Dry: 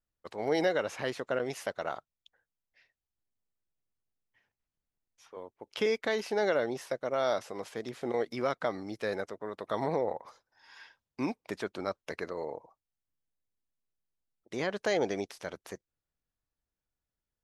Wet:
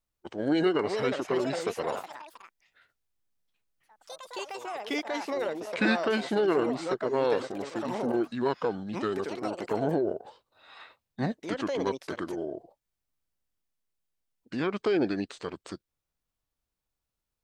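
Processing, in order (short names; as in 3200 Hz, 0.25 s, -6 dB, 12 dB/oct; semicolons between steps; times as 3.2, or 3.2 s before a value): formant shift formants -5 st; echoes that change speed 0.551 s, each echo +5 st, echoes 3, each echo -6 dB; gain +3.5 dB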